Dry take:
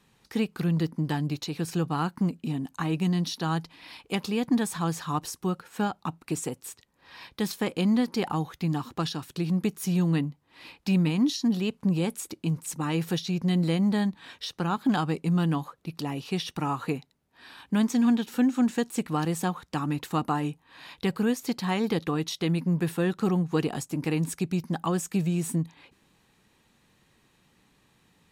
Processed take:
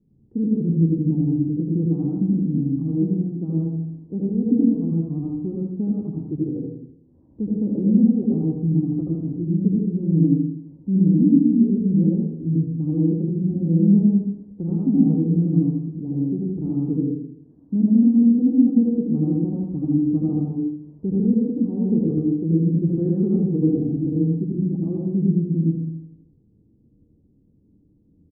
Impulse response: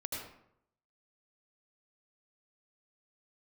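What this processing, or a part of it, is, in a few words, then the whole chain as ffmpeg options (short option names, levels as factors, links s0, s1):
next room: -filter_complex "[0:a]lowpass=f=350:w=0.5412,lowpass=f=350:w=1.3066[s0];[1:a]atrim=start_sample=2205[s1];[s0][s1]afir=irnorm=-1:irlink=0,bandreject=f=60:t=h:w=6,bandreject=f=120:t=h:w=6,bandreject=f=180:t=h:w=6,asettb=1/sr,asplit=3[s2][s3][s4];[s2]atrim=end=22.874[s5];[s3]atrim=start=22.87:end=23.43,asetpts=PTS-STARTPTS,afade=t=in:d=0.004:c=qsin,afade=t=out:st=0.556:d=0.004:c=qsin,equalizer=f=2100:t=o:w=1.7:g=14[s6];[s4]atrim=start=23.426[s7];[s5][s6]acrossfade=d=0.004:c1=hsin:c2=qsin[s8];[s8][s7]acrossfade=d=0.004:c1=qsin:c2=hsin,asplit=2[s9][s10];[s10]adelay=80,lowpass=f=2000:p=1,volume=0.376,asplit=2[s11][s12];[s12]adelay=80,lowpass=f=2000:p=1,volume=0.35,asplit=2[s13][s14];[s14]adelay=80,lowpass=f=2000:p=1,volume=0.35,asplit=2[s15][s16];[s16]adelay=80,lowpass=f=2000:p=1,volume=0.35[s17];[s9][s11][s13][s15][s17]amix=inputs=5:normalize=0,volume=2.24"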